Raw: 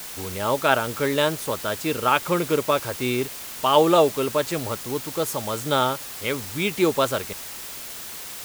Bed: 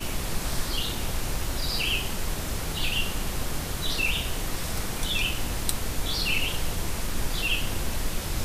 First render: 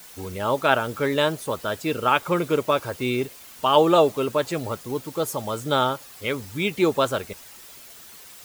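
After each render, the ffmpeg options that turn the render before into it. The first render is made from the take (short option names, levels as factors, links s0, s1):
-af "afftdn=nr=10:nf=-36"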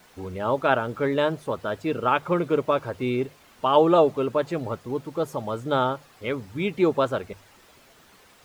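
-af "lowpass=f=1500:p=1,bandreject=f=50:t=h:w=6,bandreject=f=100:t=h:w=6,bandreject=f=150:t=h:w=6"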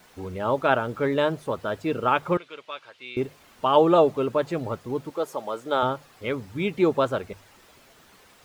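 -filter_complex "[0:a]asettb=1/sr,asplit=3[s0][s1][s2];[s0]atrim=end=2.374[s3];[s1]atrim=start=2.37:end=3.17,asetpts=PTS-STARTPTS,afade=t=in:d=0.004:c=qsin,afade=t=out:st=0.796:d=0.004:c=qsin,bandpass=f=3200:t=q:w=1.5[s4];[s2]atrim=start=3.166[s5];[s3][s4]acrossfade=d=0.004:c1=hsin:c2=qsin[s6];[s6][s5]acrossfade=d=0.004:c1=qsin:c2=hsin,asettb=1/sr,asplit=3[s7][s8][s9];[s7]atrim=end=5.104[s10];[s8]atrim=start=5.1:end=5.83,asetpts=PTS-STARTPTS,afade=t=in:d=0.004:c=qsin,afade=t=out:st=0.726:d=0.004:c=qsin,highpass=350[s11];[s9]atrim=start=5.826[s12];[s10][s11]acrossfade=d=0.004:c1=hsin:c2=qsin[s13];[s13][s12]acrossfade=d=0.004:c1=qsin:c2=hsin"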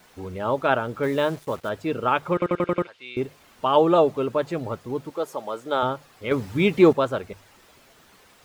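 -filter_complex "[0:a]asettb=1/sr,asplit=3[s0][s1][s2];[s0]atrim=end=1.034[s3];[s1]atrim=start=1.03:end=1.69,asetpts=PTS-STARTPTS,afade=t=in:d=0.004:c=qsin,afade=t=out:st=0.656:d=0.004:c=qsin,acrusher=bits=6:mix=0:aa=0.5[s4];[s2]atrim=start=1.686[s5];[s3][s4]acrossfade=d=0.004:c1=hsin:c2=qsin[s6];[s6][s5]acrossfade=d=0.004:c1=qsin:c2=hsin,asettb=1/sr,asplit=3[s7][s8][s9];[s7]atrim=end=6.314[s10];[s8]atrim=start=6.31:end=6.93,asetpts=PTS-STARTPTS,afade=t=in:d=0.004:c=qsin,afade=t=out:st=0.616:d=0.004:c=qsin,acontrast=74[s11];[s9]atrim=start=6.926[s12];[s10][s11]acrossfade=d=0.004:c1=hsin:c2=qsin[s13];[s13][s12]acrossfade=d=0.004:c1=qsin:c2=hsin,asplit=7[s14][s15][s16][s17][s18][s19][s20];[s14]atrim=end=2.422[s21];[s15]atrim=start=2.328:end=2.422[s22];[s16]atrim=start=2.328:end=2.422[s23];[s17]atrim=start=2.328:end=2.422[s24];[s18]atrim=start=2.328:end=2.422[s25];[s19]atrim=start=2.328:end=2.422[s26];[s20]atrim=start=2.868[s27];[s21][s22]acrossfade=d=0.004:c1=hsin:c2=hsin[s28];[s28][s23]acrossfade=d=0.004:c1=hsin:c2=hsin[s29];[s29][s24]acrossfade=d=0.004:c1=hsin:c2=hsin[s30];[s30][s25]acrossfade=d=0.004:c1=hsin:c2=hsin[s31];[s31][s26]acrossfade=d=0.004:c1=hsin:c2=hsin[s32];[s32][s27]acrossfade=d=0.004:c1=hsin:c2=hsin"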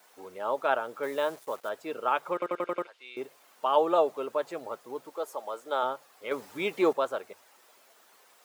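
-af "highpass=620,equalizer=f=2700:t=o:w=2.9:g=-7.5"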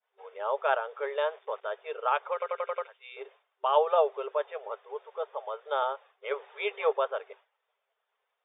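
-af "agate=range=0.0224:threshold=0.00447:ratio=3:detection=peak,afftfilt=real='re*between(b*sr/4096,390,3700)':imag='im*between(b*sr/4096,390,3700)':win_size=4096:overlap=0.75"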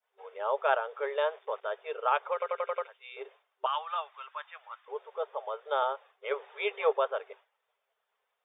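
-filter_complex "[0:a]asettb=1/sr,asplit=3[s0][s1][s2];[s0]atrim=end=3.664[s3];[s1]atrim=start=3.66:end=4.88,asetpts=PTS-STARTPTS,afade=t=in:d=0.004:c=qsin,afade=t=out:st=1.216:d=0.004:c=qsin,highpass=f=1100:w=0.5412,highpass=f=1100:w=1.3066[s4];[s2]atrim=start=4.876[s5];[s3][s4]acrossfade=d=0.004:c1=hsin:c2=qsin[s6];[s6][s5]acrossfade=d=0.004:c1=qsin:c2=hsin"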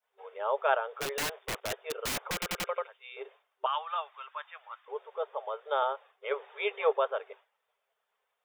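-filter_complex "[0:a]asplit=3[s0][s1][s2];[s0]afade=t=out:st=1:d=0.02[s3];[s1]aeval=exprs='(mod(23.7*val(0)+1,2)-1)/23.7':c=same,afade=t=in:st=1:d=0.02,afade=t=out:st=2.67:d=0.02[s4];[s2]afade=t=in:st=2.67:d=0.02[s5];[s3][s4][s5]amix=inputs=3:normalize=0"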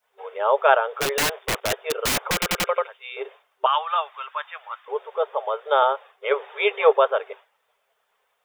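-af "volume=3.35,alimiter=limit=0.708:level=0:latency=1"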